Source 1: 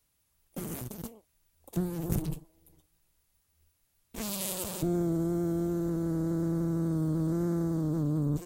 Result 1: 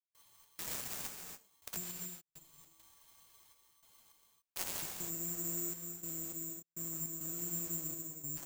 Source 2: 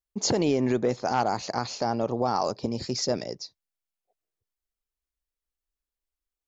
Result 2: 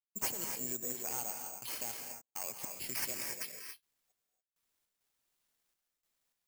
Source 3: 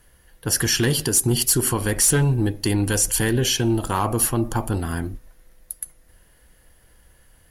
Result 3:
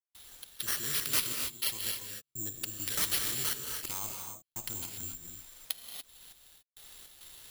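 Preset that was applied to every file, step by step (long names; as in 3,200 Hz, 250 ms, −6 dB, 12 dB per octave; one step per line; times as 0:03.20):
first-order pre-emphasis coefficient 0.8
downward compressor 2 to 1, threshold −51 dBFS
gate pattern ".xx.xxxxx..xx.." 102 BPM −60 dB
reverb whose tail is shaped and stops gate 310 ms rising, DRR 3 dB
bad sample-rate conversion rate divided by 6×, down none, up zero stuff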